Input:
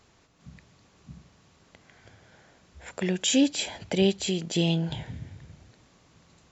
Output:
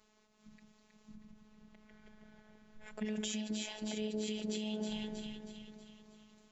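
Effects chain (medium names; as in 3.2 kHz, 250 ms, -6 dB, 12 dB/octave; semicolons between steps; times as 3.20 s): 1.14–3.05 s: tone controls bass +10 dB, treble -8 dB; echo whose repeats swap between lows and highs 159 ms, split 1 kHz, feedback 70%, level -4 dB; peak limiter -20.5 dBFS, peak gain reduction 9.5 dB; robot voice 214 Hz; endings held to a fixed fall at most 110 dB/s; trim -6.5 dB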